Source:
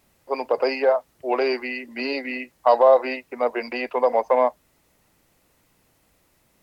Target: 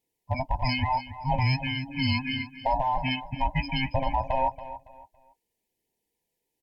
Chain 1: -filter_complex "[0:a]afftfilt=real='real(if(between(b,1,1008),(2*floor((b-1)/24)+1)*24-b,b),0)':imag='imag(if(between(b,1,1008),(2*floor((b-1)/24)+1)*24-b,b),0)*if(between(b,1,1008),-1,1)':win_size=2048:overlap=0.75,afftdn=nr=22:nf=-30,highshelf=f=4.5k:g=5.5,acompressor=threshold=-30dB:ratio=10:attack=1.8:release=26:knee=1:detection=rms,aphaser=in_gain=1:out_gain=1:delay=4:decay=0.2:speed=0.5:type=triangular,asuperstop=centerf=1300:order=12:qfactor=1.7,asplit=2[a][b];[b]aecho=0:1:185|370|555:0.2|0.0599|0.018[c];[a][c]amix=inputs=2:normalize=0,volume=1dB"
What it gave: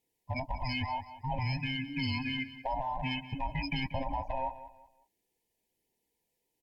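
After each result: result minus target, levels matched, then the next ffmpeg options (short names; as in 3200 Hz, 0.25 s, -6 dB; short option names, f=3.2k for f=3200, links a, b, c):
compressor: peak gain reduction +9 dB; echo 95 ms early
-filter_complex "[0:a]afftfilt=real='real(if(between(b,1,1008),(2*floor((b-1)/24)+1)*24-b,b),0)':imag='imag(if(between(b,1,1008),(2*floor((b-1)/24)+1)*24-b,b),0)*if(between(b,1,1008),-1,1)':win_size=2048:overlap=0.75,afftdn=nr=22:nf=-30,highshelf=f=4.5k:g=5.5,acompressor=threshold=-20dB:ratio=10:attack=1.8:release=26:knee=1:detection=rms,aphaser=in_gain=1:out_gain=1:delay=4:decay=0.2:speed=0.5:type=triangular,asuperstop=centerf=1300:order=12:qfactor=1.7,asplit=2[a][b];[b]aecho=0:1:185|370|555:0.2|0.0599|0.018[c];[a][c]amix=inputs=2:normalize=0,volume=1dB"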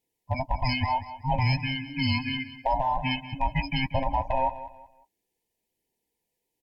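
echo 95 ms early
-filter_complex "[0:a]afftfilt=real='real(if(between(b,1,1008),(2*floor((b-1)/24)+1)*24-b,b),0)':imag='imag(if(between(b,1,1008),(2*floor((b-1)/24)+1)*24-b,b),0)*if(between(b,1,1008),-1,1)':win_size=2048:overlap=0.75,afftdn=nr=22:nf=-30,highshelf=f=4.5k:g=5.5,acompressor=threshold=-20dB:ratio=10:attack=1.8:release=26:knee=1:detection=rms,aphaser=in_gain=1:out_gain=1:delay=4:decay=0.2:speed=0.5:type=triangular,asuperstop=centerf=1300:order=12:qfactor=1.7,asplit=2[a][b];[b]aecho=0:1:280|560|840:0.2|0.0599|0.018[c];[a][c]amix=inputs=2:normalize=0,volume=1dB"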